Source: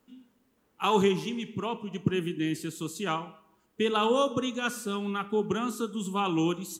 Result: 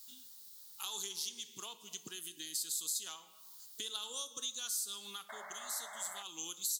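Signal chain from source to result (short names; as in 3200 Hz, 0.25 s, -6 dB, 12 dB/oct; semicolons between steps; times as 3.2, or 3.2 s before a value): differentiator; painted sound noise, 5.29–6.23, 560–2200 Hz -42 dBFS; companded quantiser 8-bit; compressor 4:1, threshold -59 dBFS, peak gain reduction 19.5 dB; resonant high shelf 3200 Hz +8.5 dB, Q 3; gain +11.5 dB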